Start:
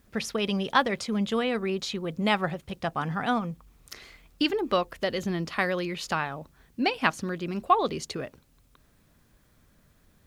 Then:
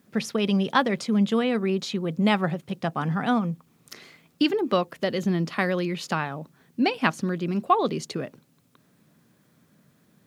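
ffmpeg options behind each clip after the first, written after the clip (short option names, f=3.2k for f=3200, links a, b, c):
-af "highpass=f=150:w=0.5412,highpass=f=150:w=1.3066,lowshelf=f=250:g=11"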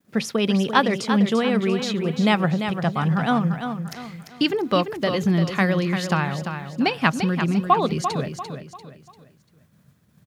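-af "agate=range=-33dB:threshold=-55dB:ratio=3:detection=peak,aecho=1:1:344|688|1032|1376:0.398|0.147|0.0545|0.0202,asubboost=boost=6:cutoff=110,volume=3.5dB"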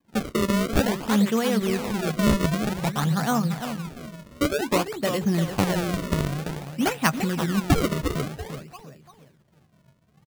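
-filter_complex "[0:a]acrusher=samples=31:mix=1:aa=0.000001:lfo=1:lforange=49.6:lforate=0.53,asplit=2[a][b];[b]adelay=14,volume=-13.5dB[c];[a][c]amix=inputs=2:normalize=0,volume=-2.5dB"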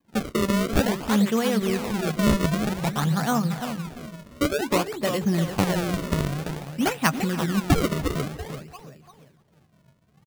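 -filter_complex "[0:a]asplit=2[a][b];[b]adelay=291.5,volume=-19dB,highshelf=f=4k:g=-6.56[c];[a][c]amix=inputs=2:normalize=0"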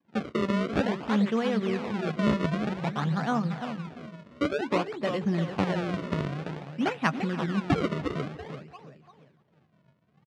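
-af "highpass=120,lowpass=3.3k,volume=-3.5dB"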